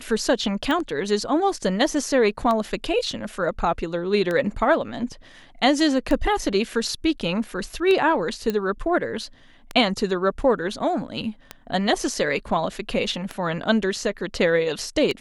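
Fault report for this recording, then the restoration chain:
tick 33 1/3 rpm -13 dBFS
8.50 s: pop -12 dBFS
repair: de-click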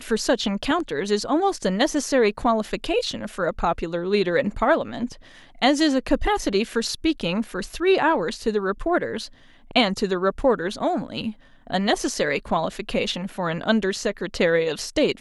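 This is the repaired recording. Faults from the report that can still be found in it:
nothing left

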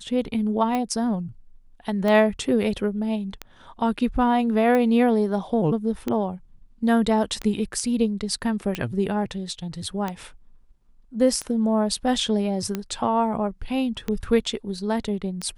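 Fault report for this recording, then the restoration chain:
tick 45 rpm -13 dBFS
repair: de-click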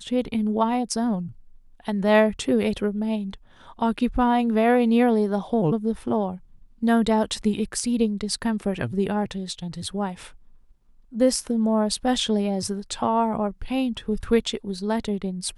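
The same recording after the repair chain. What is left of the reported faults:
nothing left

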